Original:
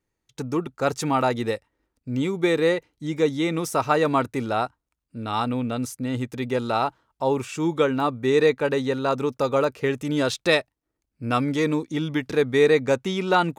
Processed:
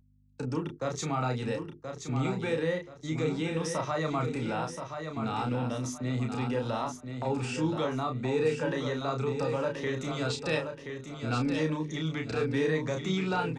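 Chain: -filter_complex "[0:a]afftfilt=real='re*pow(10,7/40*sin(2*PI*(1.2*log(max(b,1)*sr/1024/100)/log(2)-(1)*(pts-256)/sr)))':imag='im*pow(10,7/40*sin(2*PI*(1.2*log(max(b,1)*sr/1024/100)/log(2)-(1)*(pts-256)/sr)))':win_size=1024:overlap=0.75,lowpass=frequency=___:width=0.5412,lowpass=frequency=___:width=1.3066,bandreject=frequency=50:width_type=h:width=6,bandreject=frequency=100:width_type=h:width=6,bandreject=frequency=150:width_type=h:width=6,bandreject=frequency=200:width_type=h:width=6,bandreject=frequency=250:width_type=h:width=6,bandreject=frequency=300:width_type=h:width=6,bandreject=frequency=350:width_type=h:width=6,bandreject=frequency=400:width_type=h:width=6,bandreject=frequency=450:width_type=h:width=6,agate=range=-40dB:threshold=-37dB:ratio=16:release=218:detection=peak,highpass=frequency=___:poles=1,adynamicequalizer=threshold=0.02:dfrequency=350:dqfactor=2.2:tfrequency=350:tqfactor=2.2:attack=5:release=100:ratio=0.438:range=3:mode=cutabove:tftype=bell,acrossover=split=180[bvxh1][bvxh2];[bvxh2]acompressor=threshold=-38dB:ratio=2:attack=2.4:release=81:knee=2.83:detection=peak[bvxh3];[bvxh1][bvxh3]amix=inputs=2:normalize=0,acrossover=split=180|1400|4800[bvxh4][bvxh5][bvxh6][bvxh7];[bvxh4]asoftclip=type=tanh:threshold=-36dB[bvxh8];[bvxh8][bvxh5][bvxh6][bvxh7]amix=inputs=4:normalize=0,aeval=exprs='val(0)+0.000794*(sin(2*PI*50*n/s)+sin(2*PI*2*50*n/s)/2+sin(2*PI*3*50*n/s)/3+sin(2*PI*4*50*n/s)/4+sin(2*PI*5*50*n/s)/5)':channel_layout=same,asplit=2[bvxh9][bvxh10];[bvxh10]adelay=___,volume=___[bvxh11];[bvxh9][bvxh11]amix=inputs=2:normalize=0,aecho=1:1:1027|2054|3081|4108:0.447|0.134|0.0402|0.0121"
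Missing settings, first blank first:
8000, 8000, 52, 32, -5dB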